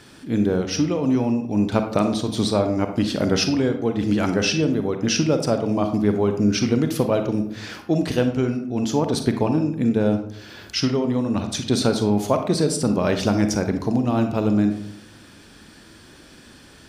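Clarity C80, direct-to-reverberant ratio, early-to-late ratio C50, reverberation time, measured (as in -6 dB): 11.5 dB, 6.5 dB, 8.0 dB, 0.70 s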